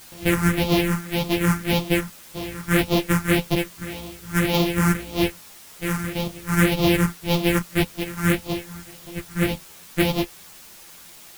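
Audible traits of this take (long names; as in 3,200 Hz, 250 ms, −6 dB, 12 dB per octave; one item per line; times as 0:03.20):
a buzz of ramps at a fixed pitch in blocks of 256 samples
phaser sweep stages 4, 1.8 Hz, lowest notch 600–1,600 Hz
a quantiser's noise floor 8 bits, dither triangular
a shimmering, thickened sound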